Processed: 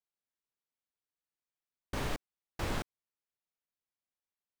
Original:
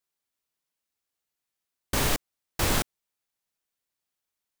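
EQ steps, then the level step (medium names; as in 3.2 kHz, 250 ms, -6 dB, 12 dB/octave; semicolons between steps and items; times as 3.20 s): low-pass 2.4 kHz 6 dB/octave; -8.5 dB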